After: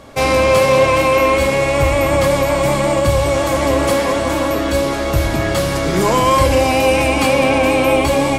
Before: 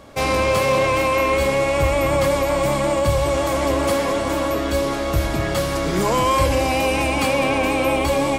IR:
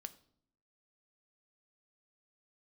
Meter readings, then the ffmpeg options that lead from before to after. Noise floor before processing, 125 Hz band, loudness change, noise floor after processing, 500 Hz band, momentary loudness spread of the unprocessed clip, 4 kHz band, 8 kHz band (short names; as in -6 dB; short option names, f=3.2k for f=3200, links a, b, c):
-23 dBFS, +4.5 dB, +4.5 dB, -19 dBFS, +5.0 dB, 4 LU, +4.5 dB, +4.5 dB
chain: -filter_complex "[0:a]asplit=2[a][b];[1:a]atrim=start_sample=2205,asetrate=26019,aresample=44100[c];[b][c]afir=irnorm=-1:irlink=0,volume=14dB[d];[a][d]amix=inputs=2:normalize=0,volume=-9.5dB"